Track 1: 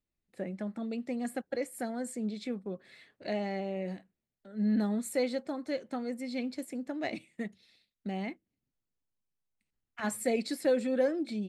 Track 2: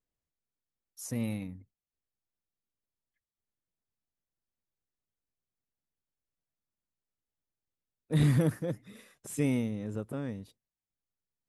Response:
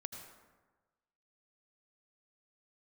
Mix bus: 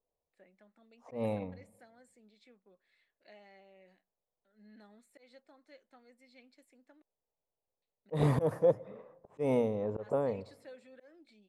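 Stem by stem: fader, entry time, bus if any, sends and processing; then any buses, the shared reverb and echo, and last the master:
-18.5 dB, 0.00 s, muted 7.02–7.82, no send, bell 2300 Hz +2.5 dB 1.7 oct; de-esser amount 95%; HPF 810 Hz 6 dB/oct
-4.0 dB, 0.00 s, send -15 dB, notches 60/120 Hz; low-pass opened by the level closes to 720 Hz, open at -27 dBFS; band shelf 690 Hz +15 dB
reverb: on, RT60 1.3 s, pre-delay 72 ms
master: high shelf 5400 Hz -6 dB; auto swell 0.145 s

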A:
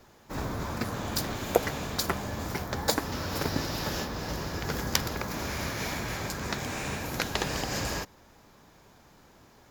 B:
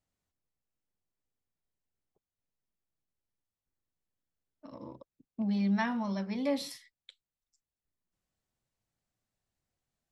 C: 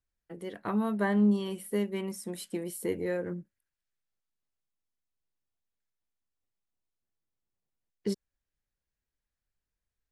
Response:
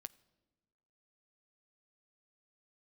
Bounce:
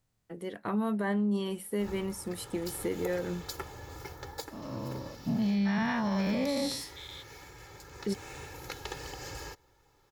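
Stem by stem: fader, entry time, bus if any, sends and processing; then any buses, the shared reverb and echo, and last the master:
-14.5 dB, 1.50 s, send -6 dB, comb 2.3 ms, depth 82%; auto duck -9 dB, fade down 0.25 s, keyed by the second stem
+0.5 dB, 0.00 s, no send, spectral dilation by 0.24 s; bell 120 Hz +11 dB 0.81 oct
+1.0 dB, 0.00 s, no send, dry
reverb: on, RT60 1.3 s, pre-delay 7 ms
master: limiter -22.5 dBFS, peak gain reduction 8.5 dB

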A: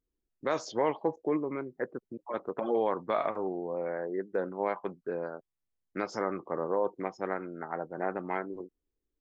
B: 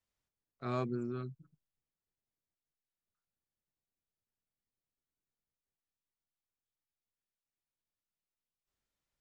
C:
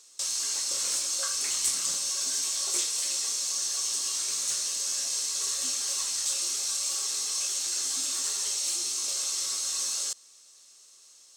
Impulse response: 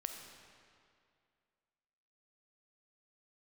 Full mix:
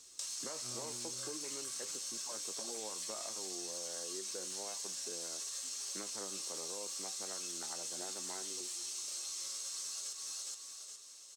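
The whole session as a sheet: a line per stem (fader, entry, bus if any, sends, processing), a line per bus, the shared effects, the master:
-4.0 dB, 0.00 s, no send, no echo send, three-band squash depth 70%
-4.0 dB, 0.00 s, no send, no echo send, dry
+2.0 dB, 0.00 s, no send, echo send -6 dB, limiter -23 dBFS, peak gain reduction 9.5 dB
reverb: off
echo: feedback echo 0.416 s, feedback 33%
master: HPF 51 Hz; flange 0.24 Hz, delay 7.9 ms, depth 2.2 ms, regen +66%; compressor 10:1, threshold -39 dBFS, peak gain reduction 11 dB

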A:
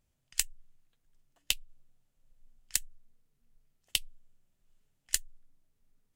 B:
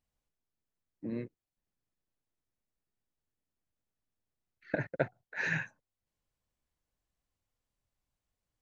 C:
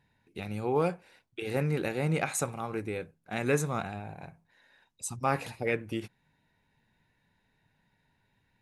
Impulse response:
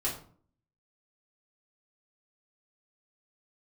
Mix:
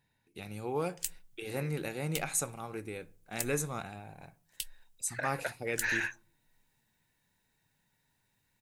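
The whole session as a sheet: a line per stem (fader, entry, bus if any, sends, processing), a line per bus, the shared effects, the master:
-5.5 dB, 0.65 s, bus A, no send, dry
+2.5 dB, 0.45 s, bus A, no send, HPF 840 Hz
-7.0 dB, 0.00 s, no bus, send -21.5 dB, dry
bus A: 0.0 dB, limiter -23.5 dBFS, peak gain reduction 10 dB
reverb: on, RT60 0.50 s, pre-delay 3 ms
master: high shelf 5200 Hz +11.5 dB

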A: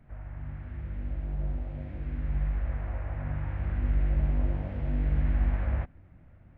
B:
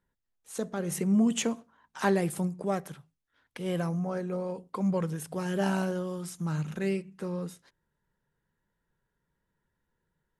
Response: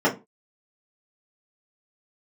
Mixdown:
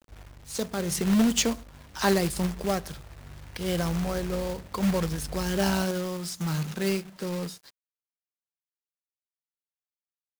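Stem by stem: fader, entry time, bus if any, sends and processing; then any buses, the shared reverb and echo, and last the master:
-6.5 dB, 0.00 s, no send, auto duck -7 dB, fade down 0.25 s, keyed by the second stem
+2.0 dB, 0.00 s, no send, dry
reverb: off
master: bell 4700 Hz +12.5 dB 0.79 oct; companded quantiser 4-bit

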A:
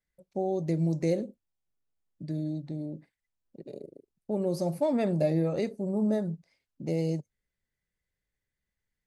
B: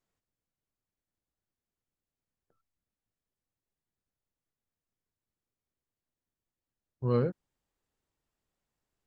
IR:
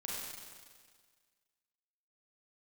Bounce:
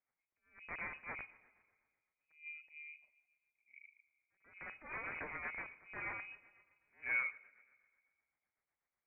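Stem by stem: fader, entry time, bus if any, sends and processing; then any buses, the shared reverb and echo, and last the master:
-11.5 dB, 0.00 s, send -15 dB, wrapped overs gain 24 dB; attack slew limiter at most 160 dB/s
+0.5 dB, 0.00 s, send -19 dB, HPF 580 Hz 12 dB/oct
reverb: on, RT60 1.7 s, pre-delay 32 ms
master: HPF 280 Hz 12 dB/oct; rotary speaker horn 8 Hz; inverted band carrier 2700 Hz

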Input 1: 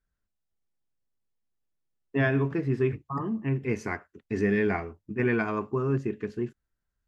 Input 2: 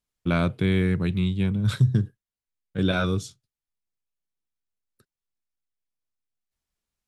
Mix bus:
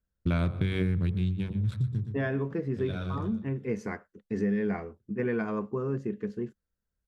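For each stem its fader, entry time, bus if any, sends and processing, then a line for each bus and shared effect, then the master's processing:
-5.5 dB, 0.00 s, no send, no echo send, thirty-one-band EQ 200 Hz +10 dB, 500 Hz +10 dB, 2500 Hz -5 dB
-0.5 dB, 0.00 s, no send, echo send -20.5 dB, Wiener smoothing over 41 samples; bell 67 Hz +13 dB 1.4 oct; de-hum 47.58 Hz, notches 28; auto duck -14 dB, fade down 1.20 s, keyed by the first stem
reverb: off
echo: feedback echo 0.12 s, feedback 40%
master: compressor 6:1, threshold -24 dBFS, peak gain reduction 8.5 dB

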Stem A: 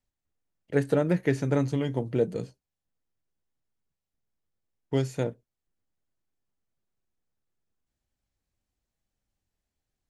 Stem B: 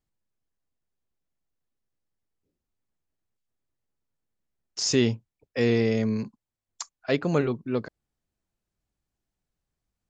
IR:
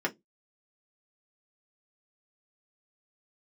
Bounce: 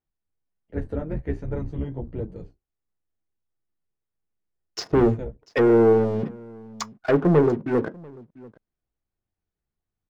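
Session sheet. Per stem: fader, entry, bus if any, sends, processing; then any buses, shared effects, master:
-3.0 dB, 0.00 s, no send, no echo send, octaver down 2 oct, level +3 dB; high shelf 2400 Hz -10 dB; chorus voices 2, 1.3 Hz, delay 12 ms, depth 3 ms
-2.0 dB, 0.00 s, send -12 dB, echo send -22 dB, treble ducked by the level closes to 560 Hz, closed at -23 dBFS; sample leveller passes 3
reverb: on, RT60 0.15 s, pre-delay 3 ms
echo: echo 0.692 s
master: high shelf 5400 Hz -12 dB

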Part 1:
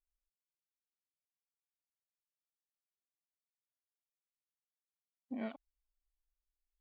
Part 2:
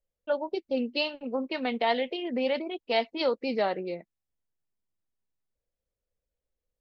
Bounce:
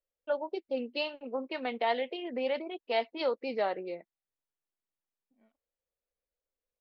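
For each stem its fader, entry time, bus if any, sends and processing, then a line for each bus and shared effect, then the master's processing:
-14.0 dB, 0.00 s, no send, compressor 5:1, threshold -51 dBFS, peak gain reduction 14.5 dB; tremolo 4.4 Hz, depth 71%
-2.5 dB, 0.00 s, no send, tone controls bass -11 dB, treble -3 dB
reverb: off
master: high shelf 4100 Hz -6 dB

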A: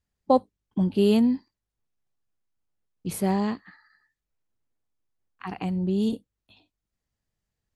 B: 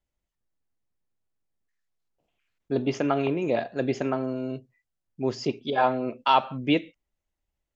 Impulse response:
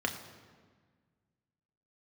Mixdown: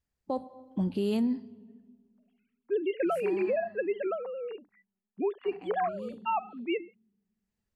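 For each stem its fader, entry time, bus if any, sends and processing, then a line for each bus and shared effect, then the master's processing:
-4.0 dB, 0.00 s, send -22 dB, auto duck -18 dB, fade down 1.70 s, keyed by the second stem
-14.5 dB, 0.00 s, no send, sine-wave speech; AGC gain up to 15.5 dB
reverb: on, RT60 1.6 s, pre-delay 3 ms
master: limiter -21.5 dBFS, peak gain reduction 11 dB

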